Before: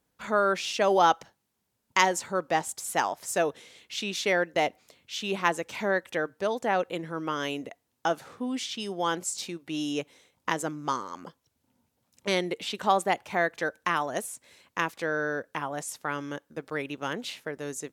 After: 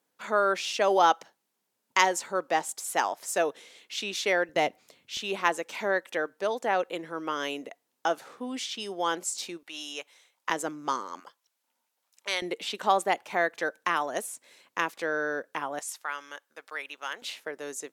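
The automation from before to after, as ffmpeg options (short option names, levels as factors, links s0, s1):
-af "asetnsamples=n=441:p=0,asendcmd='4.49 highpass f 130;5.17 highpass f 300;9.63 highpass f 820;10.5 highpass f 270;11.2 highpass f 870;12.42 highpass f 270;15.79 highpass f 940;17.22 highpass f 370',highpass=290"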